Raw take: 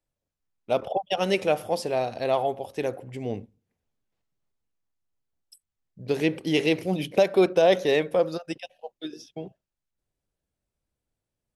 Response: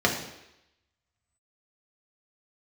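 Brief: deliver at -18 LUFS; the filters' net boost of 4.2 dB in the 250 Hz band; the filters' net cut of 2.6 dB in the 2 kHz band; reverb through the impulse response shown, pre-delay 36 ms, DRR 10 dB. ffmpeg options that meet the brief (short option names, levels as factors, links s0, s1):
-filter_complex "[0:a]equalizer=f=250:t=o:g=6.5,equalizer=f=2000:t=o:g=-3.5,asplit=2[s0][s1];[1:a]atrim=start_sample=2205,adelay=36[s2];[s1][s2]afir=irnorm=-1:irlink=0,volume=0.0562[s3];[s0][s3]amix=inputs=2:normalize=0,volume=1.78"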